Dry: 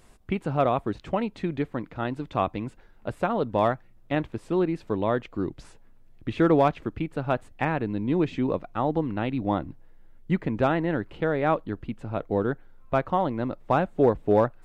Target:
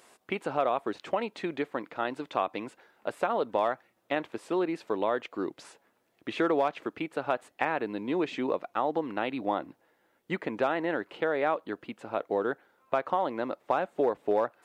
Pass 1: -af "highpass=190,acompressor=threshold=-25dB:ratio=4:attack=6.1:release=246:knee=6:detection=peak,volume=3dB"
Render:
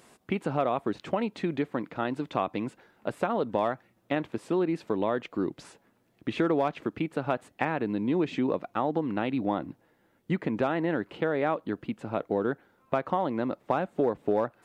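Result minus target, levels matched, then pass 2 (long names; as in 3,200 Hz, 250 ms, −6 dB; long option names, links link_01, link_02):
250 Hz band +3.5 dB
-af "highpass=420,acompressor=threshold=-25dB:ratio=4:attack=6.1:release=246:knee=6:detection=peak,volume=3dB"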